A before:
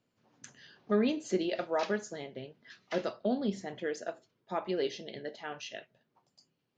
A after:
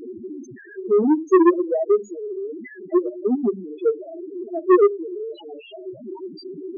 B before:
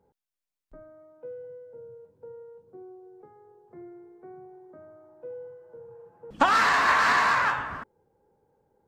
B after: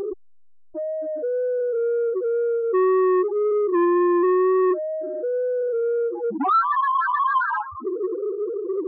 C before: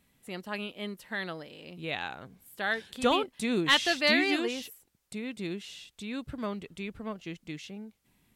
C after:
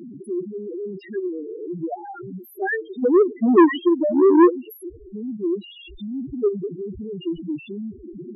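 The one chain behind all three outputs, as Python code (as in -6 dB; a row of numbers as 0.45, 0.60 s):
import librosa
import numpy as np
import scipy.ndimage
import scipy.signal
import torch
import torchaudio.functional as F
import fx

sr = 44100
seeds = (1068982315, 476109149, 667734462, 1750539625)

y = x + 0.5 * 10.0 ** (-28.5 / 20.0) * np.sign(x)
y = fx.low_shelf(y, sr, hz=64.0, db=-2.5)
y = fx.level_steps(y, sr, step_db=14)
y = fx.peak_eq(y, sr, hz=360.0, db=13.5, octaves=0.65)
y = fx.echo_feedback(y, sr, ms=99, feedback_pct=17, wet_db=-21.0)
y = fx.spec_topn(y, sr, count=2)
y = fx.wow_flutter(y, sr, seeds[0], rate_hz=2.1, depth_cents=19.0)
y = fx.transformer_sat(y, sr, knee_hz=580.0)
y = y * 10.0 ** (-22 / 20.0) / np.sqrt(np.mean(np.square(y)))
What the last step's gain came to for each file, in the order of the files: +9.5, +15.5, +11.5 dB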